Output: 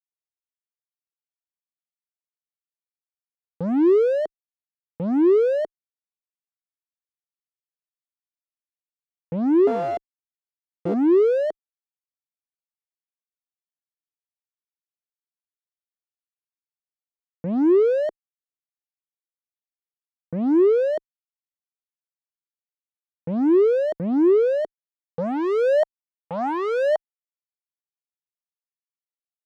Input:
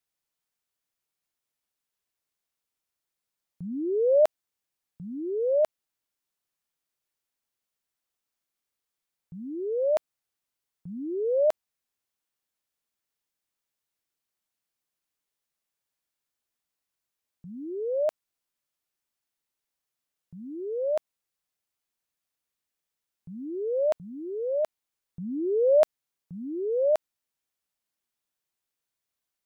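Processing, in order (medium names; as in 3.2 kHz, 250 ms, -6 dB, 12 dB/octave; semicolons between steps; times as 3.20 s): 9.67–10.94 s: sorted samples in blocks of 64 samples; fuzz box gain 51 dB, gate -56 dBFS; band-pass sweep 370 Hz -> 770 Hz, 24.79–25.90 s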